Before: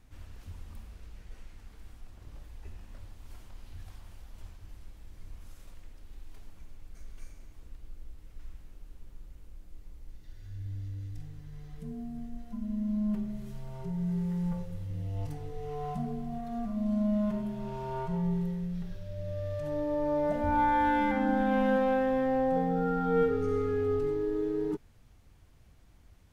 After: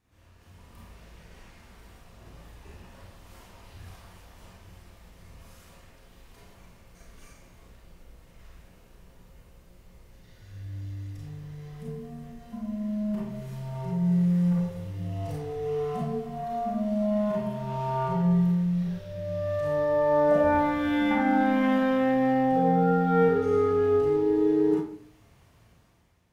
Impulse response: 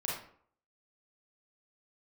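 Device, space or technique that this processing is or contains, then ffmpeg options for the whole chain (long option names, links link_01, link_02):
far laptop microphone: -filter_complex "[1:a]atrim=start_sample=2205[link_01];[0:a][link_01]afir=irnorm=-1:irlink=0,highpass=frequency=130:poles=1,dynaudnorm=framelen=200:gausssize=7:maxgain=11dB,volume=-7dB"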